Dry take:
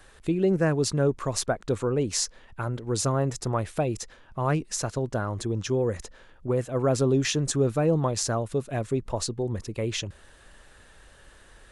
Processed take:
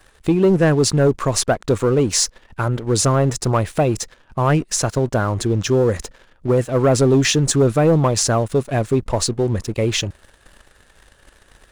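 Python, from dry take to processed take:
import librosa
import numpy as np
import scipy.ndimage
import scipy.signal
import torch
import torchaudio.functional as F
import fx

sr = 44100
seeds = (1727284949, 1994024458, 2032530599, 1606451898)

y = fx.leveller(x, sr, passes=2)
y = y * librosa.db_to_amplitude(2.5)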